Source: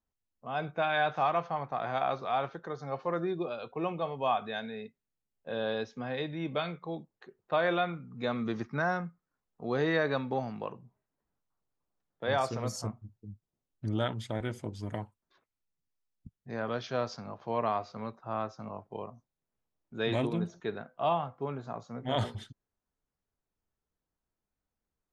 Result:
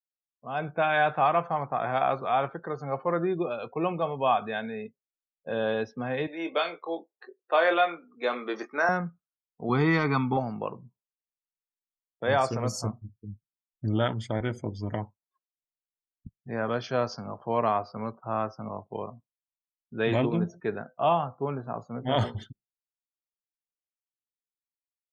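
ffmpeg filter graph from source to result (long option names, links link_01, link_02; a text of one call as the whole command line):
ffmpeg -i in.wav -filter_complex "[0:a]asettb=1/sr,asplit=3[link_01][link_02][link_03];[link_01]atrim=end=6.274[link_04];[link_02]atrim=start=6.27:end=8.89,asetpts=PTS-STARTPTS,afade=type=in:duration=0.004:curve=qsin,afade=type=out:start_time=2.616:duration=0.004:curve=qsin,highpass=frequency=340:width=0.5412,highpass=frequency=340:width=1.3066,highshelf=frequency=4200:gain=9,asplit=2[link_05][link_06];[link_06]adelay=24,volume=-8.5dB[link_07];[link_05][link_07]amix=inputs=2:normalize=0,atrim=end_sample=115542[link_08];[link_03]atrim=start=8.886[link_09];[link_04][link_08]acrossfade=duration=0.004:curve1=hsin:curve2=qsin[link_10];[link_10][link_09]acrossfade=duration=0.004:curve1=qsin:curve2=hsin,asettb=1/sr,asplit=3[link_11][link_12][link_13];[link_11]atrim=end=9.694[link_14];[link_12]atrim=start=9.69:end=10.37,asetpts=PTS-STARTPTS,afade=type=in:duration=0.004:curve=qsin,afade=type=out:start_time=0.676:duration=0.004:curve=qsin,aecho=1:1:0.9:0.98,atrim=end_sample=29988,asoftclip=type=hard:threshold=-19dB[link_15];[link_13]atrim=start=10.366[link_16];[link_14][link_15]acrossfade=duration=0.004:curve1=hsin:curve2=qsin[link_17];[link_17][link_16]acrossfade=duration=0.004:curve1=qsin:curve2=hsin,afftdn=noise_reduction=35:noise_floor=-54,bandreject=frequency=3800:width=5.3,dynaudnorm=framelen=420:gausssize=3:maxgain=5dB" out.wav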